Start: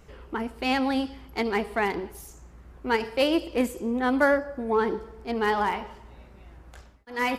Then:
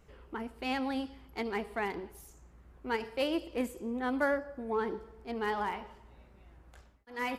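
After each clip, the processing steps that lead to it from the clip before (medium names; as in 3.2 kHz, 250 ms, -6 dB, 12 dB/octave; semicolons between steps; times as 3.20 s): peaking EQ 5.3 kHz -2 dB; trim -8.5 dB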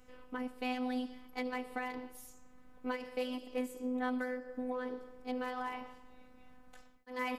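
compression 6:1, threshold -35 dBFS, peak gain reduction 10 dB; robot voice 252 Hz; trim +3 dB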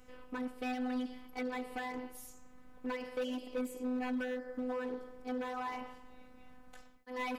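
overload inside the chain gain 33 dB; trim +2 dB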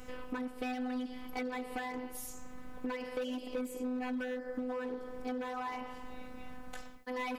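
compression 4:1, threshold -47 dBFS, peak gain reduction 11.5 dB; trim +10.5 dB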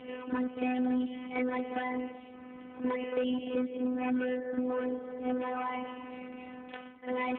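reverse echo 48 ms -9.5 dB; trim +5.5 dB; AMR-NB 5.9 kbps 8 kHz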